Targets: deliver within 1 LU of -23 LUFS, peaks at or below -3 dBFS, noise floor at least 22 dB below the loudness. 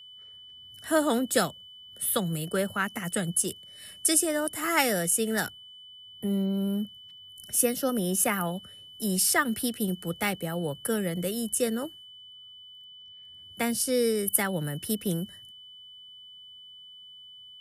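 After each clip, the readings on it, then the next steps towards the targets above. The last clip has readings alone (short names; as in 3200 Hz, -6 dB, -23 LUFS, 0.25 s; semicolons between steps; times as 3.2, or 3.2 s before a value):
steady tone 3000 Hz; tone level -46 dBFS; loudness -27.5 LUFS; peak -8.5 dBFS; loudness target -23.0 LUFS
-> notch 3000 Hz, Q 30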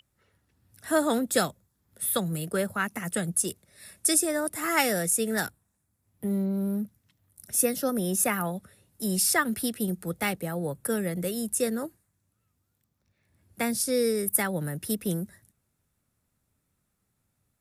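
steady tone none; loudness -27.5 LUFS; peak -8.5 dBFS; loudness target -23.0 LUFS
-> gain +4.5 dB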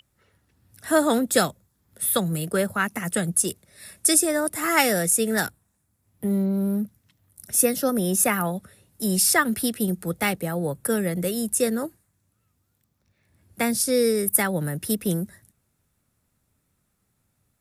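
loudness -23.0 LUFS; peak -4.0 dBFS; noise floor -72 dBFS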